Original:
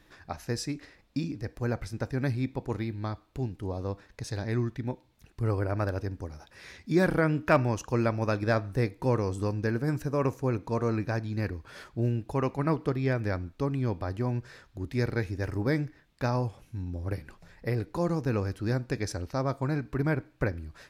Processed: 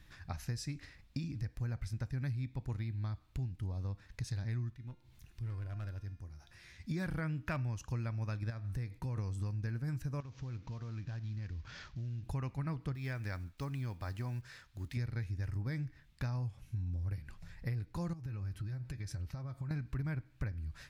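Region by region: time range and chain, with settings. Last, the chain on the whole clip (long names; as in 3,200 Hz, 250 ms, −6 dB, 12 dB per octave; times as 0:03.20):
0:04.73–0:06.80: hard clipping −24 dBFS + upward compression, threshold −34 dBFS + tuned comb filter 350 Hz, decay 0.8 s, mix 80%
0:08.50–0:09.17: downward expander −53 dBFS + downward compressor 2 to 1, threshold −37 dBFS
0:10.20–0:12.23: variable-slope delta modulation 32 kbit/s + downward compressor 4 to 1, threshold −42 dBFS
0:12.95–0:14.97: one scale factor per block 7 bits + low-shelf EQ 270 Hz −11 dB
0:18.13–0:19.71: downward compressor 10 to 1, threshold −37 dBFS + parametric band 6,000 Hz −3.5 dB 1.1 octaves + notch comb filter 240 Hz
whole clip: drawn EQ curve 120 Hz 0 dB, 410 Hz −18 dB, 2,100 Hz −7 dB; downward compressor 5 to 1, threshold −41 dBFS; level +5.5 dB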